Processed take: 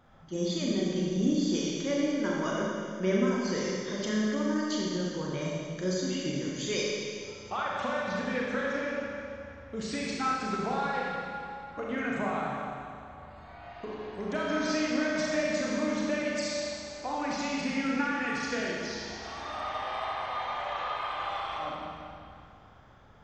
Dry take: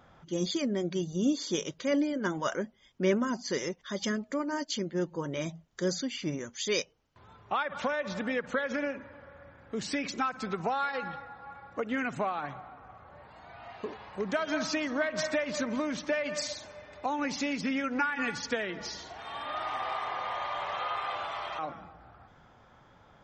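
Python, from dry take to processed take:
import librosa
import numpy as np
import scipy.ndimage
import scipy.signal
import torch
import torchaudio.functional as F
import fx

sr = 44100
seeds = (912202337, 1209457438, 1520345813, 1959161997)

y = fx.low_shelf(x, sr, hz=150.0, db=6.5)
y = fx.rev_schroeder(y, sr, rt60_s=2.3, comb_ms=29, drr_db=-4.0)
y = y * 10.0 ** (-5.0 / 20.0)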